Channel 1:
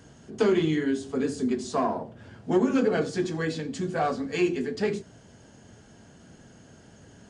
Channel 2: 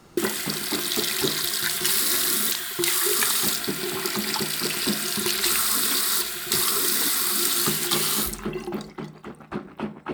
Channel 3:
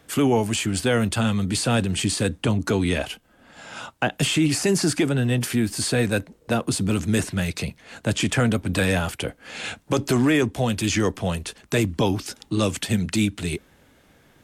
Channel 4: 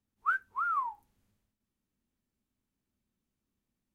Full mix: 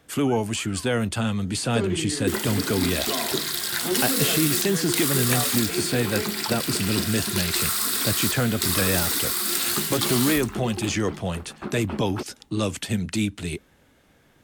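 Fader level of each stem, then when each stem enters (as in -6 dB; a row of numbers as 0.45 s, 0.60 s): -5.5 dB, -2.0 dB, -3.0 dB, -16.5 dB; 1.35 s, 2.10 s, 0.00 s, 0.00 s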